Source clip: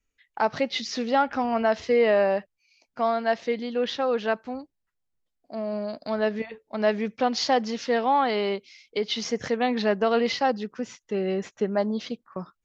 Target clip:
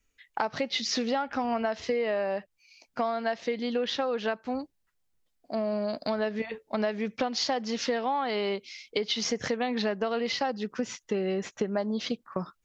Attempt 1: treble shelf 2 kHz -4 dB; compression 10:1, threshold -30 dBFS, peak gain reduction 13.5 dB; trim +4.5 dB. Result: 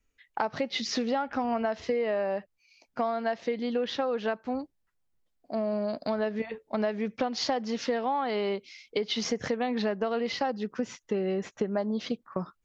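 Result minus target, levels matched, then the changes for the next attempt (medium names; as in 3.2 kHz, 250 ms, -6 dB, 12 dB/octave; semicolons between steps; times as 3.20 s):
4 kHz band -2.5 dB
change: treble shelf 2 kHz +2.5 dB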